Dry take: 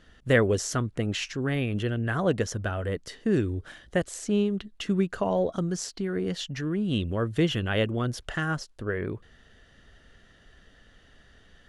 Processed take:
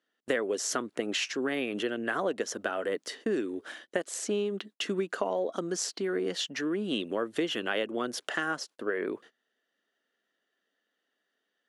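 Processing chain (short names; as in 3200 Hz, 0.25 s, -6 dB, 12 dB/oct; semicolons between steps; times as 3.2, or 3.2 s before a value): HPF 270 Hz 24 dB/oct; gate -51 dBFS, range -24 dB; compressor 6:1, threshold -29 dBFS, peak gain reduction 12.5 dB; gain +3 dB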